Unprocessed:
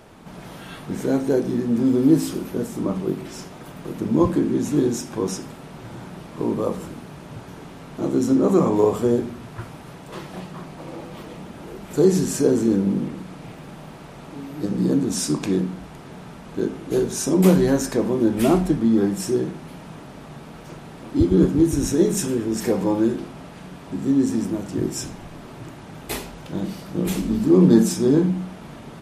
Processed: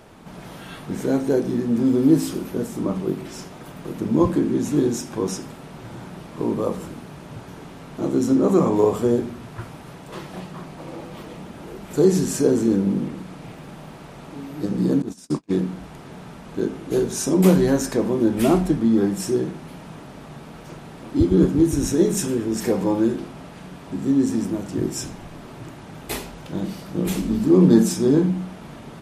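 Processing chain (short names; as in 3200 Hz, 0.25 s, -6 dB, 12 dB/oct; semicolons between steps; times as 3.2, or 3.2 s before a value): 15.02–15.62 gate -21 dBFS, range -41 dB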